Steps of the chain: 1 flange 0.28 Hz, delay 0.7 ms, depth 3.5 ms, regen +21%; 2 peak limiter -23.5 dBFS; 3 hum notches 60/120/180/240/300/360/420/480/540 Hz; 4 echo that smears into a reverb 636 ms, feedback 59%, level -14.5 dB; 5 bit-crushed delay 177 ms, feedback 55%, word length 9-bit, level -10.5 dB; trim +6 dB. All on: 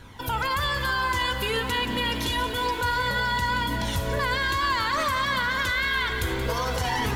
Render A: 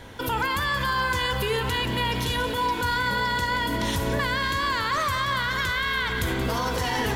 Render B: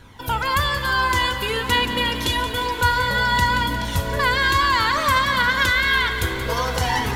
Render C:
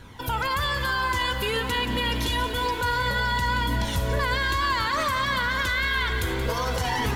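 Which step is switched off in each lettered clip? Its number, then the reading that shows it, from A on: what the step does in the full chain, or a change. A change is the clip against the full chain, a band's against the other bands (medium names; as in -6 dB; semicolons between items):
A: 1, 250 Hz band +2.0 dB; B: 2, mean gain reduction 4.0 dB; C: 3, 125 Hz band +2.0 dB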